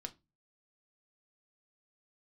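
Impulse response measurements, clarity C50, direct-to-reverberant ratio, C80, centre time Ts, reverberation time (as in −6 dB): 20.0 dB, 5.5 dB, 29.0 dB, 4 ms, 0.25 s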